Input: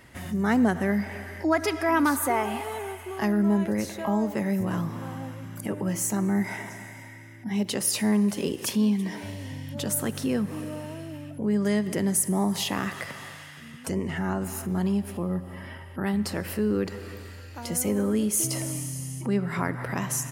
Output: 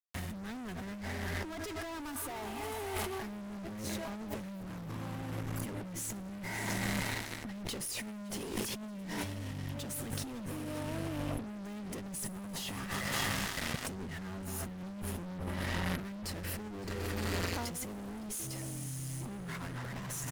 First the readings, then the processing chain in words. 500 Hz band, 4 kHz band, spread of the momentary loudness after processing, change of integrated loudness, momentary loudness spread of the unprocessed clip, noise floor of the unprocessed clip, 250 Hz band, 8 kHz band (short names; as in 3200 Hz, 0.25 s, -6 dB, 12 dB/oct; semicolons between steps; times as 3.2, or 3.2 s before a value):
-12.5 dB, -4.5 dB, 7 LU, -11.5 dB, 15 LU, -44 dBFS, -14.5 dB, -10.5 dB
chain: fuzz box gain 37 dB, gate -41 dBFS; limiter -21.5 dBFS, peak gain reduction 11 dB; low shelf 83 Hz +9 dB; echo 0.562 s -13.5 dB; negative-ratio compressor -32 dBFS, ratio -1; gain -7.5 dB